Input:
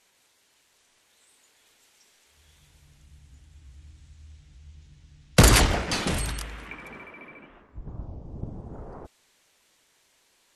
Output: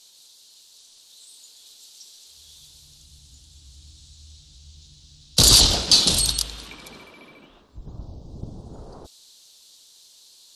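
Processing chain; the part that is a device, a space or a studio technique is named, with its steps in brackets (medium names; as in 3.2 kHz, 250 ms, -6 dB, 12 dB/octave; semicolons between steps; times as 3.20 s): over-bright horn tweeter (resonant high shelf 2.9 kHz +12 dB, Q 3; peak limiter -2.5 dBFS, peak gain reduction 10.5 dB)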